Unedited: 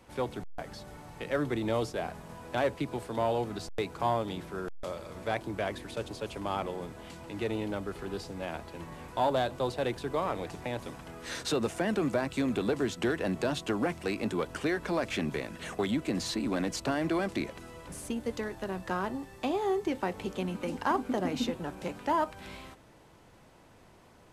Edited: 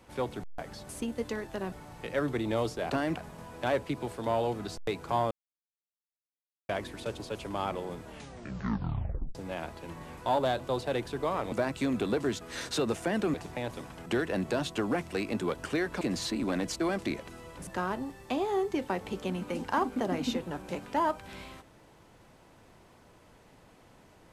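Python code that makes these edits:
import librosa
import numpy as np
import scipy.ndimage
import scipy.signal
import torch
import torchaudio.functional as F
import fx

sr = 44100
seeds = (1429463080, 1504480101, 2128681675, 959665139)

y = fx.edit(x, sr, fx.silence(start_s=4.22, length_s=1.38),
    fx.tape_stop(start_s=6.95, length_s=1.31),
    fx.swap(start_s=10.43, length_s=0.72, other_s=12.08, other_length_s=0.89),
    fx.cut(start_s=14.92, length_s=1.13),
    fx.move(start_s=16.84, length_s=0.26, to_s=2.07),
    fx.move(start_s=17.97, length_s=0.83, to_s=0.89), tone=tone)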